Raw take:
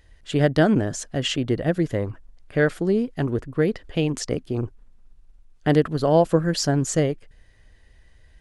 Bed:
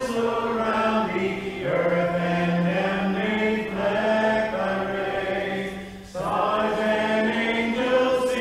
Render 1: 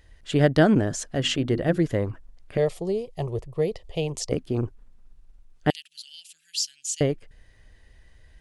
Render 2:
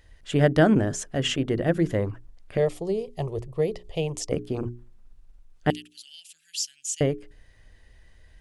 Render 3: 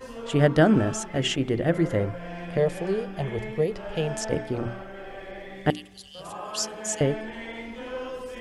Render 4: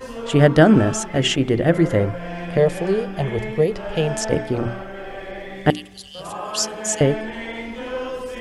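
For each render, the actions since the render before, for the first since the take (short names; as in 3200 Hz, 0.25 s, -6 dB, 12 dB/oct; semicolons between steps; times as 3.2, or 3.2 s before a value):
1.04–1.77 notches 50/100/150/200/250/300/350 Hz; 2.57–4.32 fixed phaser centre 630 Hz, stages 4; 5.7–7.01 elliptic high-pass 2700 Hz, stop band 60 dB
notches 60/120/180/240/300/360/420 Hz; dynamic EQ 4300 Hz, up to -7 dB, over -51 dBFS, Q 2.9
add bed -14 dB
gain +6.5 dB; limiter -2 dBFS, peak gain reduction 1.5 dB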